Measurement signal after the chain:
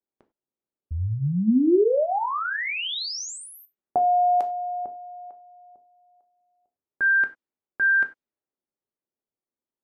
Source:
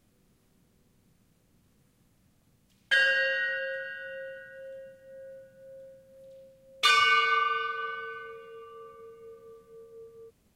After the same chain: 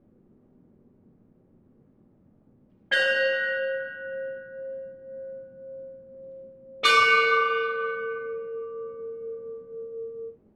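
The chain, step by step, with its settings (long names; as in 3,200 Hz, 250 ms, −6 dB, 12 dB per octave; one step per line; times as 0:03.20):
reverb whose tail is shaped and stops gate 120 ms falling, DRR 6.5 dB
low-pass that shuts in the quiet parts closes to 1,100 Hz, open at −21.5 dBFS
parametric band 330 Hz +12 dB 1.9 octaves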